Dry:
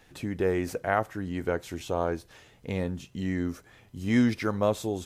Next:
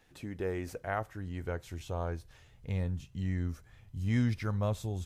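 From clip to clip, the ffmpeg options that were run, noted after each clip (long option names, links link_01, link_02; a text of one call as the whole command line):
ffmpeg -i in.wav -af "asubboost=boost=9:cutoff=110,volume=-8dB" out.wav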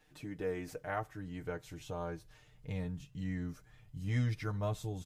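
ffmpeg -i in.wav -af "aecho=1:1:6.6:0.75,volume=-4.5dB" out.wav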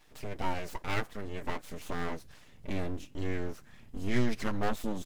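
ffmpeg -i in.wav -af "aeval=exprs='abs(val(0))':channel_layout=same,volume=7.5dB" out.wav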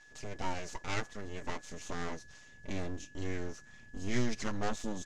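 ffmpeg -i in.wav -af "aeval=exprs='val(0)+0.002*sin(2*PI*1700*n/s)':channel_layout=same,lowpass=frequency=6600:width_type=q:width=3.5,volume=-3.5dB" out.wav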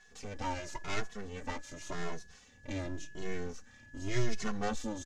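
ffmpeg -i in.wav -filter_complex "[0:a]asplit=2[link_01][link_02];[link_02]adelay=2.3,afreqshift=0.9[link_03];[link_01][link_03]amix=inputs=2:normalize=1,volume=3dB" out.wav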